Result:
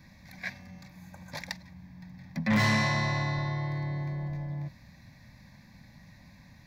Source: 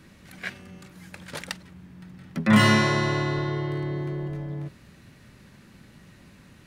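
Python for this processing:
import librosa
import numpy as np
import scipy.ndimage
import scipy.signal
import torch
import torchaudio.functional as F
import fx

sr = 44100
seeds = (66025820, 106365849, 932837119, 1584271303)

y = fx.spec_repair(x, sr, seeds[0], start_s=0.96, length_s=0.33, low_hz=1600.0, high_hz=6100.0, source='before')
y = fx.fixed_phaser(y, sr, hz=2000.0, stages=8)
y = 10.0 ** (-20.0 / 20.0) * np.tanh(y / 10.0 ** (-20.0 / 20.0))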